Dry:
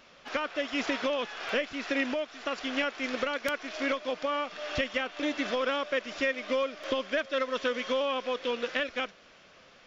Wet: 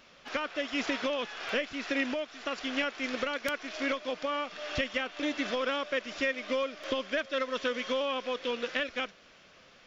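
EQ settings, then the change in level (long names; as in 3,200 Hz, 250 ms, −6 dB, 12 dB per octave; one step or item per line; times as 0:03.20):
parametric band 740 Hz −2.5 dB 2.3 octaves
0.0 dB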